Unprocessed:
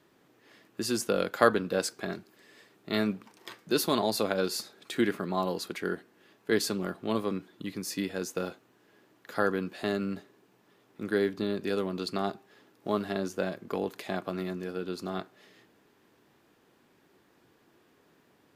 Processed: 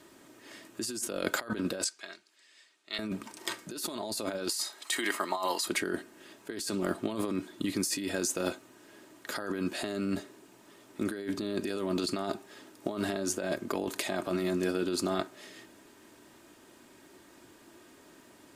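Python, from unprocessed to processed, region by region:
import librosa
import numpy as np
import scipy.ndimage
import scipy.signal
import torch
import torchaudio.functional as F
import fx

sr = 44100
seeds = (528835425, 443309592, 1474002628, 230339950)

y = fx.chain(x, sr, fx.lowpass(hz=3700.0, slope=12),
    fx.differentiator(), at=(1.84, 2.99))
y = fx.chain(y, sr, fx.highpass(hz=590.0, slope=12),
    fx.comb(ms=1.0, depth=0.39), at=(4.49, 5.67))
y = fx.peak_eq(y, sr, hz=8300.0, db=9.5, octaves=0.97)
y = y + 0.44 * np.pad(y, (int(3.2 * sr / 1000.0), 0))[:len(y)]
y = fx.over_compress(y, sr, threshold_db=-35.0, ratio=-1.0)
y = y * 10.0 ** (2.0 / 20.0)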